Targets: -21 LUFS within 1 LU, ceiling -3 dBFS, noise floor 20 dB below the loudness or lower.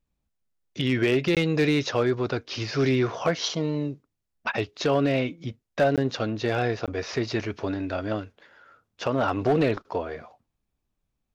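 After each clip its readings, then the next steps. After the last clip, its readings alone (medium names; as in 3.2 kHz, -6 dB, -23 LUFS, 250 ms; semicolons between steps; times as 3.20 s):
clipped samples 0.3%; clipping level -14.5 dBFS; dropouts 3; longest dropout 17 ms; loudness -26.0 LUFS; peak level -14.5 dBFS; loudness target -21.0 LUFS
-> clip repair -14.5 dBFS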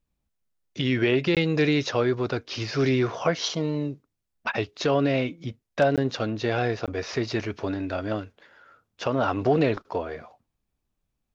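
clipped samples 0.0%; dropouts 3; longest dropout 17 ms
-> interpolate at 1.35/5.96/6.86 s, 17 ms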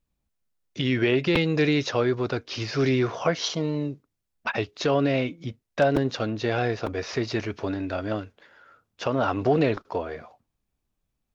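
dropouts 0; loudness -26.0 LUFS; peak level -8.5 dBFS; loudness target -21.0 LUFS
-> trim +5 dB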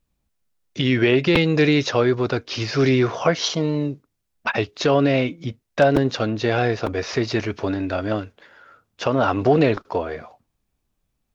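loudness -21.0 LUFS; peak level -3.5 dBFS; noise floor -75 dBFS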